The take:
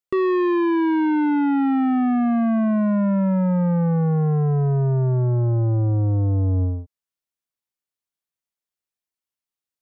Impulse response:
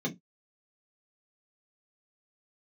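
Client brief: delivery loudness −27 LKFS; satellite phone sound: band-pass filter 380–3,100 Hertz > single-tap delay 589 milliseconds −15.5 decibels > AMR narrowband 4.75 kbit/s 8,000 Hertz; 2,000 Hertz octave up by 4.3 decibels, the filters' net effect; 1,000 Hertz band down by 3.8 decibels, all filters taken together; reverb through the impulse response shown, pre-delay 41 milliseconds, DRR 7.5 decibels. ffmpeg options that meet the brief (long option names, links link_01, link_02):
-filter_complex "[0:a]equalizer=frequency=1000:width_type=o:gain=-6.5,equalizer=frequency=2000:width_type=o:gain=8.5,asplit=2[link_01][link_02];[1:a]atrim=start_sample=2205,adelay=41[link_03];[link_02][link_03]afir=irnorm=-1:irlink=0,volume=-12.5dB[link_04];[link_01][link_04]amix=inputs=2:normalize=0,highpass=380,lowpass=3100,aecho=1:1:589:0.168,volume=-3dB" -ar 8000 -c:a libopencore_amrnb -b:a 4750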